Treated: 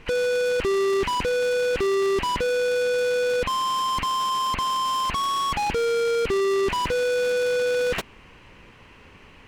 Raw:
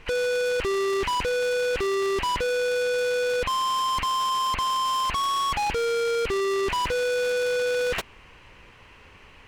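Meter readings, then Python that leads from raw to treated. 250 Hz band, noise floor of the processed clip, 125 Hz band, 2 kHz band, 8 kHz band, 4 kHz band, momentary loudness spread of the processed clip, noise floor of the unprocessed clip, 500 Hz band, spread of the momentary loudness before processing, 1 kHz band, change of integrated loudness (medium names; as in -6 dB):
+4.0 dB, -50 dBFS, +2.5 dB, 0.0 dB, 0.0 dB, 0.0 dB, 2 LU, -51 dBFS, +2.5 dB, 1 LU, +0.5 dB, +1.5 dB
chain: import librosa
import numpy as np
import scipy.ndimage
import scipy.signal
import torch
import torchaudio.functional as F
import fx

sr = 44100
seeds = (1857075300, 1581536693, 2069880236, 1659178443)

y = fx.peak_eq(x, sr, hz=220.0, db=6.5, octaves=1.7)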